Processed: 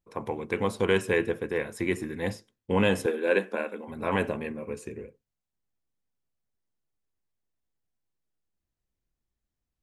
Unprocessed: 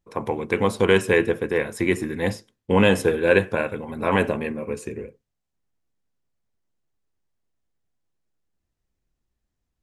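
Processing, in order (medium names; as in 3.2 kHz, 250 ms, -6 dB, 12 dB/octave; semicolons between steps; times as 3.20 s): 3.06–3.88 s: elliptic high-pass 200 Hz; trim -6.5 dB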